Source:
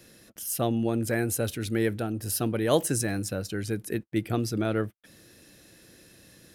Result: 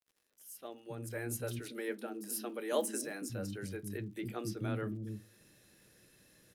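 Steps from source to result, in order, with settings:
fade in at the beginning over 1.53 s
0:01.28–0:02.99: Butterworth high-pass 210 Hz 48 dB per octave
three-band delay without the direct sound highs, mids, lows 30/310 ms, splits 290/4,600 Hz
convolution reverb RT60 0.25 s, pre-delay 5 ms, DRR 11 dB
surface crackle 94 per second −49 dBFS
notch filter 680 Hz, Q 16
level −9 dB

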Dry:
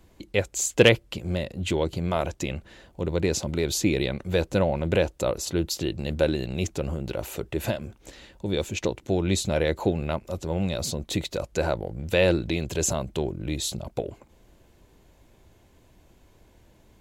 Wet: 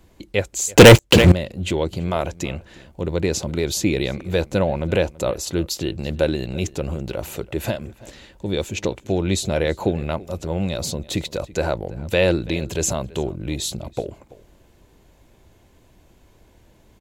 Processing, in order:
slap from a distant wall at 57 metres, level −20 dB
0:00.77–0:01.32: leveller curve on the samples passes 5
level +3 dB

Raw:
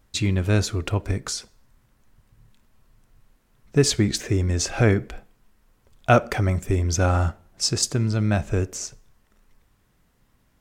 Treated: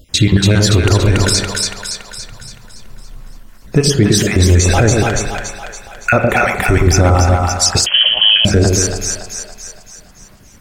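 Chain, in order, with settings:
time-frequency cells dropped at random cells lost 37%
downward compressor, threshold −25 dBFS, peak gain reduction 12.5 dB
echo with a time of its own for lows and highs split 630 Hz, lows 113 ms, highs 283 ms, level −4 dB
spring reverb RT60 1.3 s, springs 36 ms, chirp 30 ms, DRR 9 dB
0:07.86–0:08.45: voice inversion scrambler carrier 3,200 Hz
boost into a limiter +20 dB
level −1 dB

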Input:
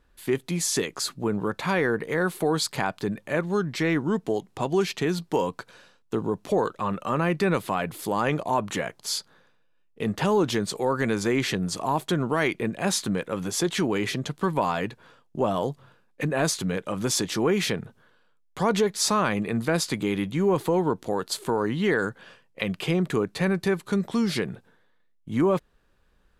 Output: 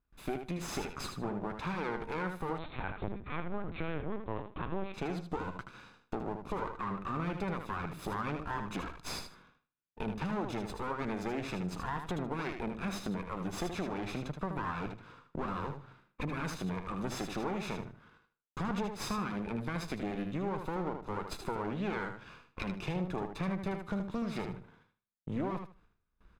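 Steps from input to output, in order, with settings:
lower of the sound and its delayed copy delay 0.79 ms
noise gate with hold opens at −55 dBFS
low-pass filter 1,700 Hz 6 dB per octave
downward compressor 3 to 1, threshold −42 dBFS, peak gain reduction 16 dB
repeating echo 77 ms, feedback 21%, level −7 dB
0:02.58–0:04.94: linear-prediction vocoder at 8 kHz pitch kept
level +4 dB

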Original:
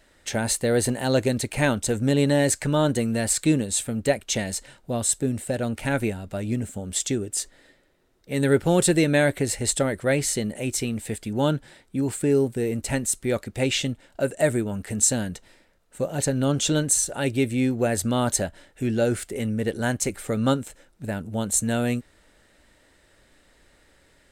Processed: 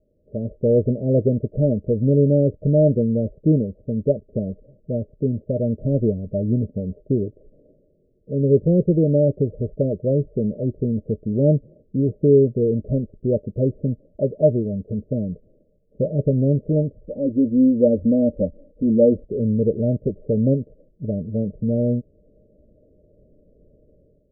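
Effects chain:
automatic gain control gain up to 10.5 dB
Chebyshev low-pass with heavy ripple 630 Hz, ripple 6 dB
0:17.04–0:19.26: comb filter 3.8 ms, depth 85%

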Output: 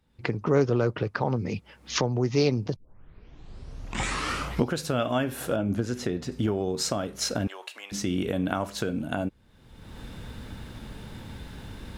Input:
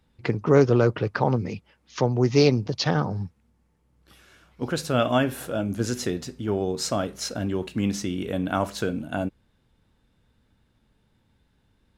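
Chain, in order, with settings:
camcorder AGC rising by 35 dB per second
0:02.76: tape start 1.89 s
0:05.56–0:06.32: high-shelf EQ 4,300 Hz −11 dB
0:07.47–0:07.92: high-pass filter 670 Hz 24 dB per octave
level −5 dB

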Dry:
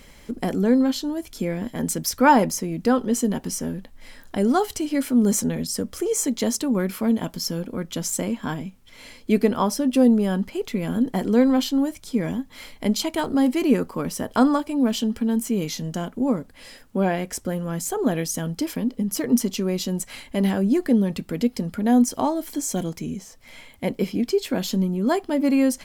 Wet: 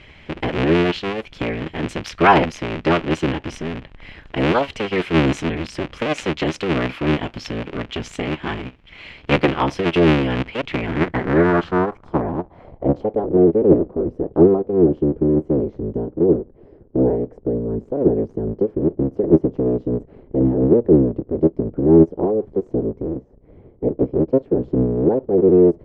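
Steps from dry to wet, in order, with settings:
sub-harmonics by changed cycles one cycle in 3, inverted
low-pass filter sweep 2,700 Hz → 430 Hz, 0:10.68–0:13.38
level +1.5 dB

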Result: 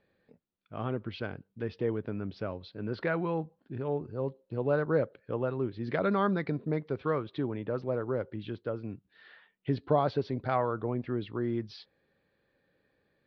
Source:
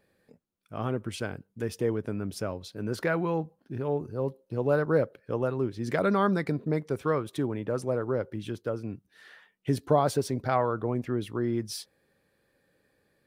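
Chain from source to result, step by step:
Butterworth low-pass 4,400 Hz 48 dB per octave
level −3 dB

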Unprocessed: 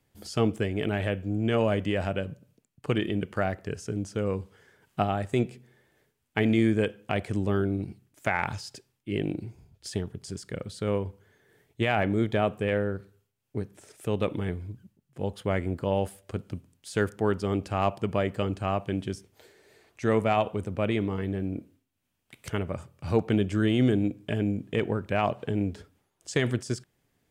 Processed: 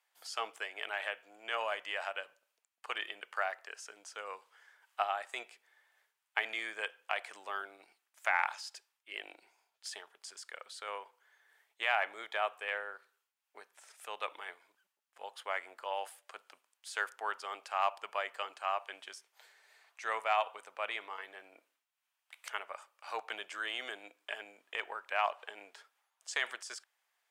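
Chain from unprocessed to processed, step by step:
high-pass filter 860 Hz 24 dB per octave
spectral tilt −1.5 dB per octave

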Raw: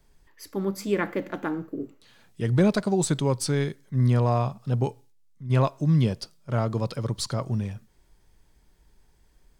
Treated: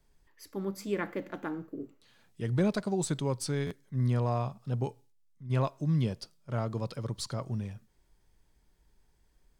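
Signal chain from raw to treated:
buffer that repeats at 0:03.66, samples 512, times 3
level −7 dB

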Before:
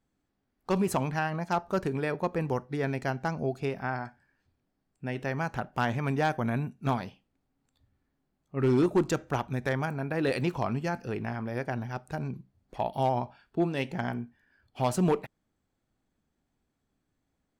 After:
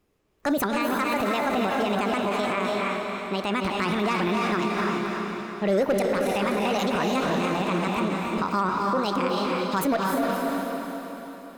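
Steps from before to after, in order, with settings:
feedback delay with all-pass diffusion 462 ms, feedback 56%, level −3 dB
brickwall limiter −24.5 dBFS, peak gain reduction 11.5 dB
change of speed 1.52×
level +8 dB

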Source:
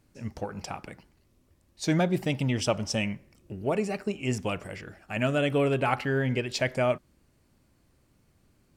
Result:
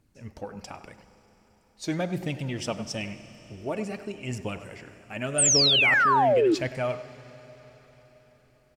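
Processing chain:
phase shifter 0.9 Hz, delay 4.8 ms, feedback 36%
on a send at −13 dB: convolution reverb RT60 4.9 s, pre-delay 33 ms
on the sum: sound drawn into the spectrogram fall, 0:05.38–0:06.55, 300–9,200 Hz −16 dBFS
far-end echo of a speakerphone 100 ms, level −13 dB
level −4.5 dB

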